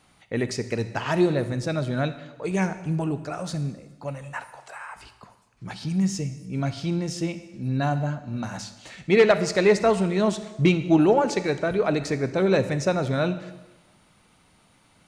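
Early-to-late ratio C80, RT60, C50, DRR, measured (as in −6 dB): 14.0 dB, 1.1 s, 12.5 dB, 11.5 dB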